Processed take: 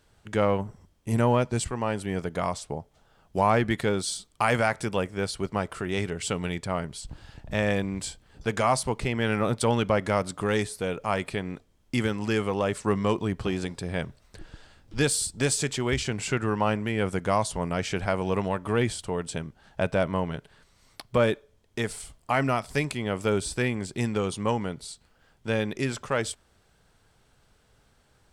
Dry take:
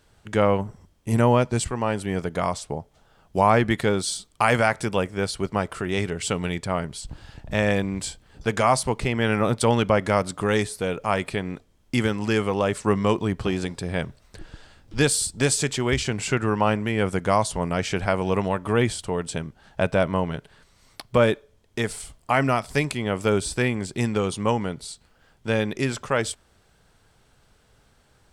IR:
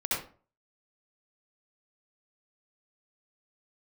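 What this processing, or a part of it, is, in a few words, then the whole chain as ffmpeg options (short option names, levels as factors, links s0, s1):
parallel distortion: -filter_complex "[0:a]asplit=2[s0][s1];[s1]asoftclip=type=hard:threshold=0.126,volume=0.224[s2];[s0][s2]amix=inputs=2:normalize=0,volume=0.562"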